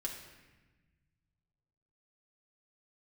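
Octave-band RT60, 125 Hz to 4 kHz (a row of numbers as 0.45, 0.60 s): 2.8, 1.9, 1.2, 1.2, 1.3, 0.95 s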